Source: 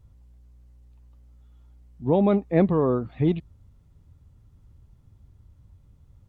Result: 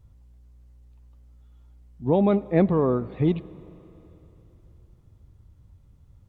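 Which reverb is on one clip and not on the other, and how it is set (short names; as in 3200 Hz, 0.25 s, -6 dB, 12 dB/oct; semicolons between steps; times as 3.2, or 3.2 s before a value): digital reverb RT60 3.5 s, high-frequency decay 1×, pre-delay 35 ms, DRR 19.5 dB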